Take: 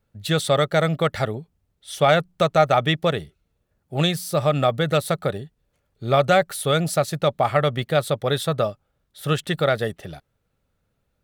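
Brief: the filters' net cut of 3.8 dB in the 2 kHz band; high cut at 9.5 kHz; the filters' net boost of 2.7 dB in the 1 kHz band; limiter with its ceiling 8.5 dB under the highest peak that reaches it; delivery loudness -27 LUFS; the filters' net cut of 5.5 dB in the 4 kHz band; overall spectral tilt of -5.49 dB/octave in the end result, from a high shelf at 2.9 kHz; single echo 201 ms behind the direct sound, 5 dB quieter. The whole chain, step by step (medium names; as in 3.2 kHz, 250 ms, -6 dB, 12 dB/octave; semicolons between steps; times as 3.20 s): low-pass 9.5 kHz; peaking EQ 1 kHz +6.5 dB; peaking EQ 2 kHz -8.5 dB; treble shelf 2.9 kHz +3.5 dB; peaking EQ 4 kHz -6.5 dB; peak limiter -11 dBFS; delay 201 ms -5 dB; trim -4 dB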